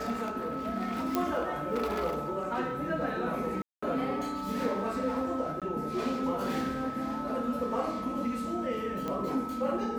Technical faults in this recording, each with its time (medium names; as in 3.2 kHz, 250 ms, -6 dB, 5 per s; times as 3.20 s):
whine 1.3 kHz -37 dBFS
1.15 s: pop -14 dBFS
3.62–3.83 s: dropout 205 ms
5.60–5.62 s: dropout 17 ms
9.08 s: pop -22 dBFS